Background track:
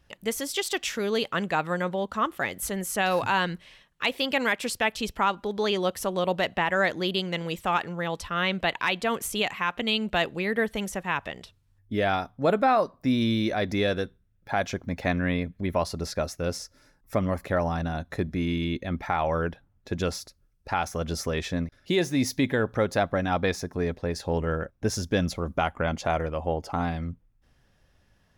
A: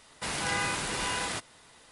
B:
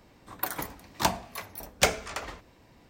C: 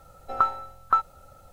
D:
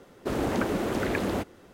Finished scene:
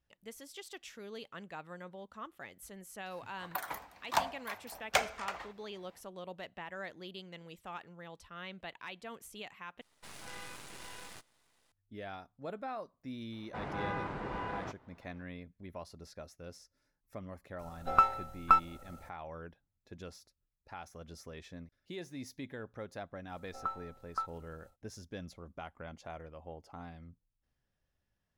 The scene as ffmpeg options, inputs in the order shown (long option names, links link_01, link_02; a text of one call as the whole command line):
ffmpeg -i bed.wav -i cue0.wav -i cue1.wav -i cue2.wav -filter_complex "[1:a]asplit=2[link_01][link_02];[3:a]asplit=2[link_03][link_04];[0:a]volume=-19.5dB[link_05];[2:a]firequalizer=gain_entry='entry(300,0);entry(720,13);entry(5700,5)':delay=0.05:min_phase=1[link_06];[link_01]aeval=exprs='max(val(0),0)':channel_layout=same[link_07];[link_02]lowpass=1100[link_08];[link_03]aeval=exprs='if(lt(val(0),0),0.708*val(0),val(0))':channel_layout=same[link_09];[link_04]acompressor=mode=upward:threshold=-39dB:ratio=2.5:attack=0.14:release=33:knee=2.83:detection=peak[link_10];[link_05]asplit=2[link_11][link_12];[link_11]atrim=end=9.814[link_13];[link_07]atrim=end=1.91,asetpts=PTS-STARTPTS,volume=-13dB[link_14];[link_12]atrim=start=11.716[link_15];[link_06]atrim=end=2.89,asetpts=PTS-STARTPTS,volume=-15.5dB,afade=type=in:duration=0.004:curve=hsin,afade=type=out:start_time=2.886:duration=0.004:curve=hsin,adelay=3120[link_16];[link_08]atrim=end=1.91,asetpts=PTS-STARTPTS,volume=-2.5dB,afade=type=in:duration=0.004:curve=hsin,afade=type=out:start_time=1.906:duration=0.004:curve=hsin,adelay=587412S[link_17];[link_09]atrim=end=1.52,asetpts=PTS-STARTPTS,volume=-1dB,afade=type=in:duration=0.02,afade=type=out:start_time=1.5:duration=0.02,adelay=17580[link_18];[link_10]atrim=end=1.52,asetpts=PTS-STARTPTS,volume=-15dB,afade=type=in:duration=0.1,afade=type=out:start_time=1.42:duration=0.1,adelay=23250[link_19];[link_13][link_14]acrossfade=duration=0.004:curve1=hsin:curve2=hsin[link_20];[link_20][link_15]acrossfade=duration=0.004:curve1=hsin:curve2=hsin[link_21];[link_21][link_16][link_17][link_18][link_19]amix=inputs=5:normalize=0" out.wav